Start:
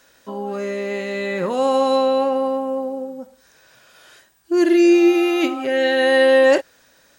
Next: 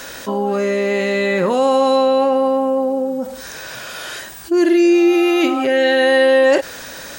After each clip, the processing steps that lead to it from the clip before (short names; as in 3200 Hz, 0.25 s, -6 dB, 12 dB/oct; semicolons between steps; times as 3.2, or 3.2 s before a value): fast leveller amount 50%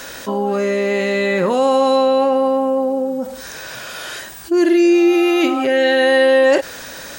nothing audible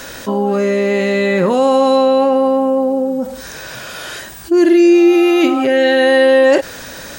low shelf 300 Hz +6 dB; gain +1 dB